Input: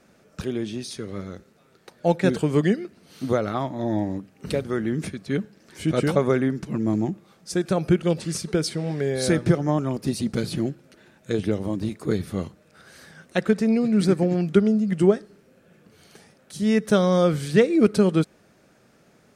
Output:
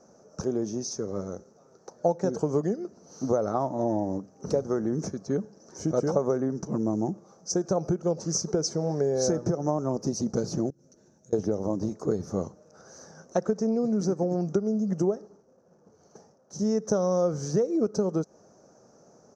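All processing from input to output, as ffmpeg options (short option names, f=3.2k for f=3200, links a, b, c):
-filter_complex "[0:a]asettb=1/sr,asplit=3[a][b][c];[a]atrim=end=10.704[d];[b]atrim=start=10.7:end=11.33,asetpts=PTS-STARTPTS,afade=t=in:d=0.004:c=qsin,afade=t=out:st=0.626:d=0.004:c=qsin,bandreject=f=5k:w=22,acompressor=threshold=-48dB:ratio=4:attack=3.2:release=140:knee=1:detection=peak,equalizer=f=970:t=o:w=2.7:g=-13[e];[c]atrim=start=11.326[f];[d][e]acrossfade=d=0.004:c1=hsin:c2=qsin[g];[g][f]acrossfade=d=0.004:c1=qsin:c2=hsin,asettb=1/sr,asplit=3[h][i][j];[h]atrim=end=15.154[k];[i]atrim=start=15.15:end=16.59,asetpts=PTS-STARTPTS,afade=t=in:d=0.004:c=qsin,afade=t=out:st=1.436:d=0.004:c=qsin,aeval=exprs='val(0)+0.5*0.00376*sgn(val(0))':c=same,agate=range=-33dB:threshold=-42dB:ratio=3:release=100:detection=peak,highshelf=f=3.9k:g=-8.5[l];[j]atrim=start=16.586[m];[k][l]acrossfade=d=0.004:c1=hsin:c2=qsin[n];[n][m]acrossfade=d=0.004:c1=qsin:c2=hsin,lowshelf=f=77:g=-10,acompressor=threshold=-23dB:ratio=12,firequalizer=gain_entry='entry(310,0);entry(470,5);entry(830,4);entry(1300,-3);entry(2100,-20);entry(3400,-22);entry(6000,11);entry(8700,-21)':delay=0.05:min_phase=1"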